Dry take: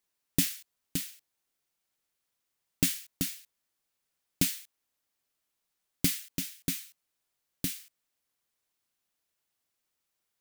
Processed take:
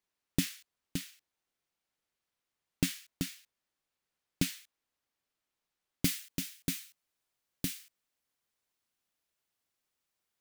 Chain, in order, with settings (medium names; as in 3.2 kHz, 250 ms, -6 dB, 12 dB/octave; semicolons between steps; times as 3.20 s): treble shelf 6.4 kHz -10.5 dB, from 6.05 s -3.5 dB; trim -1 dB